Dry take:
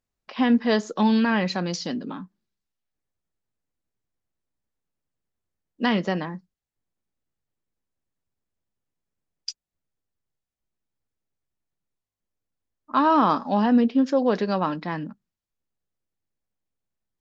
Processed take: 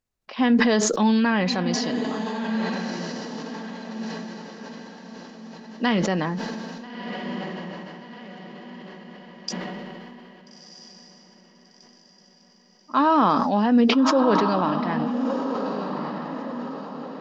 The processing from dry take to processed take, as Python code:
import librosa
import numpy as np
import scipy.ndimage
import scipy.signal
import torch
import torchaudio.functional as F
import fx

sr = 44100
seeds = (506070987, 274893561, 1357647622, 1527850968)

y = fx.echo_diffused(x, sr, ms=1336, feedback_pct=45, wet_db=-7)
y = fx.sustainer(y, sr, db_per_s=22.0)